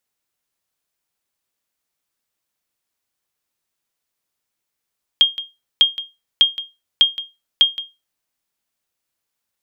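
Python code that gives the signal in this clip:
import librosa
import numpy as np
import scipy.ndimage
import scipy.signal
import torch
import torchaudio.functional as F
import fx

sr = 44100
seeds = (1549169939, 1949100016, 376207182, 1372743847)

y = fx.sonar_ping(sr, hz=3230.0, decay_s=0.23, every_s=0.6, pings=5, echo_s=0.17, echo_db=-15.5, level_db=-3.5)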